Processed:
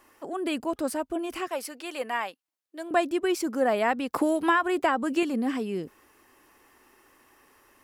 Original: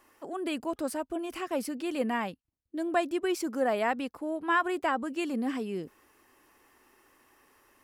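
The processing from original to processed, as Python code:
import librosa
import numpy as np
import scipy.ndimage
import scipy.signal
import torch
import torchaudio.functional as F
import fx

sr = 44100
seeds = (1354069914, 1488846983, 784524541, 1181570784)

y = fx.highpass(x, sr, hz=610.0, slope=12, at=(1.49, 2.91))
y = fx.band_squash(y, sr, depth_pct=100, at=(4.13, 5.23))
y = y * librosa.db_to_amplitude(3.5)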